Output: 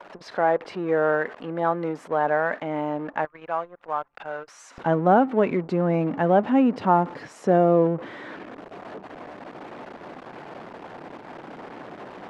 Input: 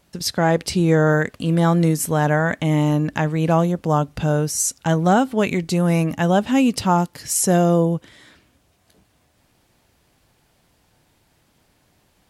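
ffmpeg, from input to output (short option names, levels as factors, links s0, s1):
-af "aeval=exprs='val(0)+0.5*0.0473*sgn(val(0))':c=same,asetnsamples=n=441:p=0,asendcmd='3.25 highpass f 1100;4.78 highpass f 270',highpass=540,anlmdn=10,lowpass=1300"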